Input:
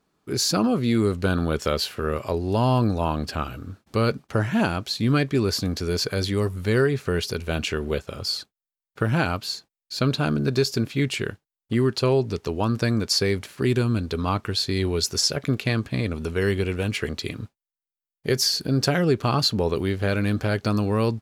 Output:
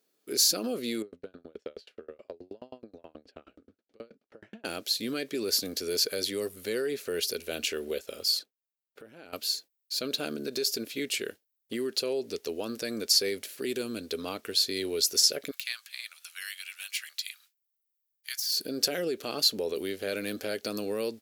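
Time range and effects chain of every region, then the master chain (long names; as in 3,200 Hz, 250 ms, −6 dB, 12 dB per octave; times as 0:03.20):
0:01.02–0:04.65: downward compressor, threshold −22 dBFS + head-to-tape spacing loss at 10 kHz 28 dB + tremolo with a ramp in dB decaying 9.4 Hz, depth 36 dB
0:08.39–0:09.33: high-shelf EQ 3,300 Hz −12 dB + downward compressor 20 to 1, threshold −34 dBFS
0:15.51–0:18.57: de-essing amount 55% + Bessel high-pass filter 1,700 Hz, order 8
whole clip: octave-band graphic EQ 125/250/500/1,000/8,000 Hz −12/+4/+8/−11/−4 dB; brickwall limiter −14 dBFS; RIAA equalisation recording; level −6 dB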